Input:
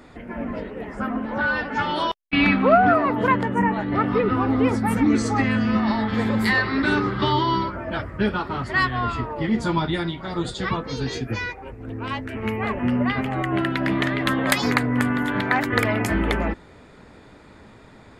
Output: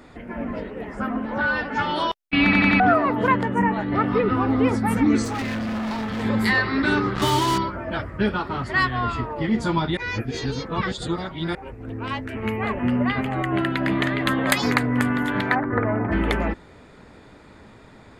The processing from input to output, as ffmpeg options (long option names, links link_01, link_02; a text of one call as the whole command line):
ffmpeg -i in.wav -filter_complex "[0:a]asettb=1/sr,asplit=3[link_01][link_02][link_03];[link_01]atrim=end=5.244[link_04];[link_02]atrim=start=5.24:end=6.24,asetpts=PTS-STARTPTS,afade=type=in:duration=0.004:curve=qsin,afade=type=out:start_time=0.996:duration=0.004:curve=qsin,volume=25dB,asoftclip=hard,volume=-25dB[link_05];[link_03]atrim=start=6.236[link_06];[link_04][link_05]acrossfade=duration=0.004:curve1=hsin:curve2=qsin[link_07];[link_07][link_06]acrossfade=duration=0.004:curve1=qsin:curve2=hsin,asettb=1/sr,asplit=3[link_08][link_09][link_10];[link_08]atrim=end=7.154[link_11];[link_09]atrim=start=7.15:end=7.58,asetpts=PTS-STARTPTS,afade=type=in:duration=0.004:curve=qsin,afade=type=out:start_time=0.426:duration=0.004:curve=qsin,acrusher=bits=3:mix=0:aa=0.5[link_12];[link_10]atrim=start=7.576[link_13];[link_11][link_12]acrossfade=duration=0.004:curve1=hsin:curve2=qsin[link_14];[link_14][link_13]acrossfade=duration=0.004:curve1=qsin:curve2=hsin,asettb=1/sr,asplit=3[link_15][link_16][link_17];[link_15]atrim=end=12.414[link_18];[link_16]atrim=start=12.41:end=14.57,asetpts=PTS-STARTPTS,afade=type=in:duration=0.004:curve=qsin,afade=type=out:start_time=2.156:duration=0.004:curve=qsin,bandreject=frequency=5500:width=6.7[link_19];[link_17]atrim=start=14.566[link_20];[link_18][link_19]acrossfade=duration=0.004:curve1=hsin:curve2=qsin[link_21];[link_21][link_20]acrossfade=duration=0.004:curve1=qsin:curve2=hsin,asplit=3[link_22][link_23][link_24];[link_22]afade=type=out:start_time=15.54:duration=0.02[link_25];[link_23]lowpass=frequency=1500:width=0.5412,lowpass=frequency=1500:width=1.3066,afade=type=in:start_time=15.54:duration=0.02,afade=type=out:start_time=16.11:duration=0.02[link_26];[link_24]afade=type=in:start_time=16.11:duration=0.02[link_27];[link_25][link_26][link_27]amix=inputs=3:normalize=0,asplit=7[link_28][link_29][link_30][link_31][link_32][link_33][link_34];[link_28]atrim=end=2.532[link_35];[link_29]atrim=start=2.438:end=2.532[link_36];[link_30]atrim=start=2.438:end=2.532[link_37];[link_31]atrim=start=2.438:end=2.532[link_38];[link_32]atrim=start=2.798:end=9.972[link_39];[link_33]atrim=start=9.968:end=11.552,asetpts=PTS-STARTPTS,areverse[link_40];[link_34]atrim=start=11.548[link_41];[link_35][link_36]acrossfade=duration=0.004:curve1=hsin:curve2=hsin[link_42];[link_42][link_37]acrossfade=duration=0.004:curve1=hsin:curve2=hsin[link_43];[link_43][link_38]acrossfade=duration=0.004:curve1=hsin:curve2=hsin[link_44];[link_44][link_39]acrossfade=duration=0.004:curve1=hsin:curve2=hsin[link_45];[link_45][link_40]acrossfade=duration=0.004:curve1=hsin:curve2=hsin[link_46];[link_46][link_41]acrossfade=duration=0.004:curve1=hsin:curve2=hsin" out.wav